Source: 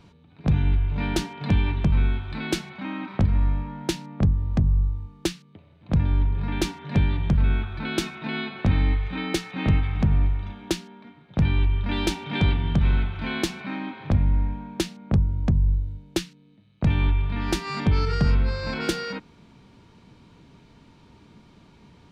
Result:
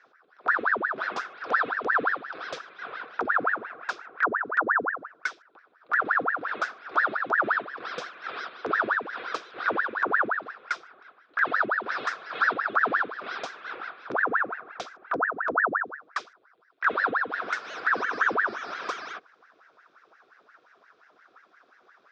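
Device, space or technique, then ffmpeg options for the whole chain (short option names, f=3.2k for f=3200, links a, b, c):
voice changer toy: -af "aeval=exprs='val(0)*sin(2*PI*1000*n/s+1000*0.85/5.7*sin(2*PI*5.7*n/s))':c=same,highpass=530,equalizer=f=580:t=q:w=4:g=-5,equalizer=f=880:t=q:w=4:g=-9,equalizer=f=1.4k:t=q:w=4:g=5,equalizer=f=2k:t=q:w=4:g=-8,equalizer=f=2.9k:t=q:w=4:g=-9,equalizer=f=4.3k:t=q:w=4:g=-8,lowpass=f=5k:w=0.5412,lowpass=f=5k:w=1.3066"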